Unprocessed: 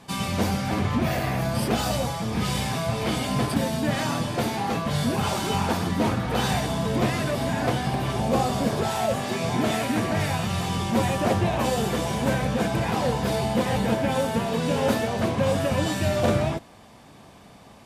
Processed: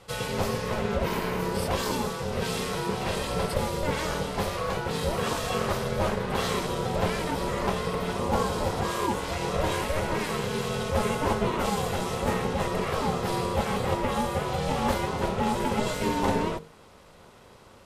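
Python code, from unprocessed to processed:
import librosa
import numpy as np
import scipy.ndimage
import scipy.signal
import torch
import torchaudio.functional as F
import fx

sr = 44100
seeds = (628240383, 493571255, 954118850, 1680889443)

y = fx.hum_notches(x, sr, base_hz=50, count=4)
y = y * np.sin(2.0 * np.pi * 310.0 * np.arange(len(y)) / sr)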